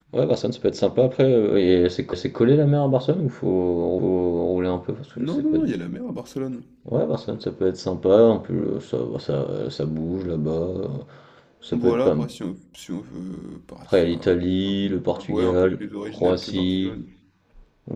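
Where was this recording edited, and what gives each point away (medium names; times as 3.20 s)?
2.13 s: repeat of the last 0.26 s
3.99 s: repeat of the last 0.57 s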